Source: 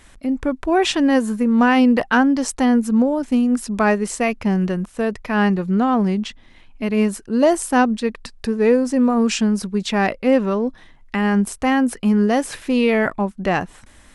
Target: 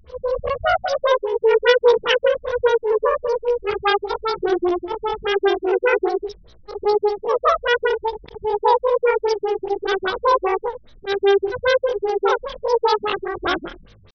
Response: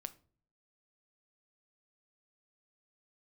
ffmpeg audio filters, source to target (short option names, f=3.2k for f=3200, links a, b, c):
-af "afftfilt=real='re':imag='-im':win_size=8192:overlap=0.75,asetrate=85689,aresample=44100,atempo=0.514651,afftfilt=real='re*lt(b*sr/1024,200*pow(6500/200,0.5+0.5*sin(2*PI*5*pts/sr)))':imag='im*lt(b*sr/1024,200*pow(6500/200,0.5+0.5*sin(2*PI*5*pts/sr)))':win_size=1024:overlap=0.75,volume=5.5dB"